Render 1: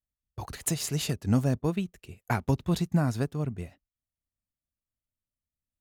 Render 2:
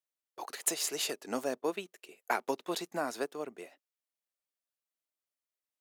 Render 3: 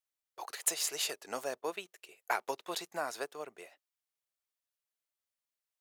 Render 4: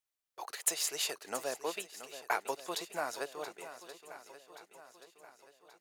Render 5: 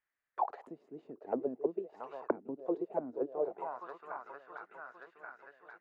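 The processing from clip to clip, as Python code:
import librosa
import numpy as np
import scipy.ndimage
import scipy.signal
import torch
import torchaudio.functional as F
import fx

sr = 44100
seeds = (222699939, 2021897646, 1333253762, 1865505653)

y1 = scipy.signal.sosfilt(scipy.signal.butter(4, 360.0, 'highpass', fs=sr, output='sos'), x)
y2 = fx.peak_eq(y1, sr, hz=240.0, db=-13.5, octaves=1.3)
y3 = fx.echo_swing(y2, sr, ms=1129, ratio=1.5, feedback_pct=44, wet_db=-13.0)
y4 = fx.envelope_lowpass(y3, sr, base_hz=250.0, top_hz=1800.0, q=4.5, full_db=-32.5, direction='down')
y4 = y4 * 10.0 ** (1.0 / 20.0)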